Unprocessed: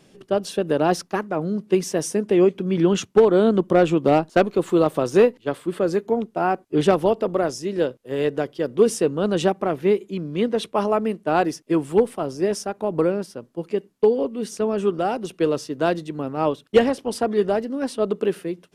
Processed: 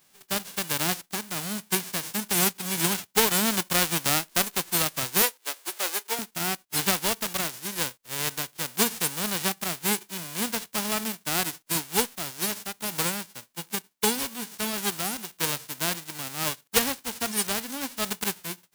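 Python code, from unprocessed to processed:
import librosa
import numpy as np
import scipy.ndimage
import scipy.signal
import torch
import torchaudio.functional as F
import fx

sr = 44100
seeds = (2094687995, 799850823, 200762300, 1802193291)

y = fx.envelope_flatten(x, sr, power=0.1)
y = fx.highpass(y, sr, hz=360.0, slope=24, at=(5.22, 6.19))
y = F.gain(torch.from_numpy(y), -7.5).numpy()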